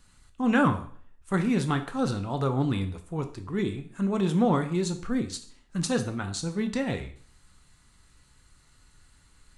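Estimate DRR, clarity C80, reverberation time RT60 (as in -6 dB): 6.5 dB, 16.0 dB, 0.50 s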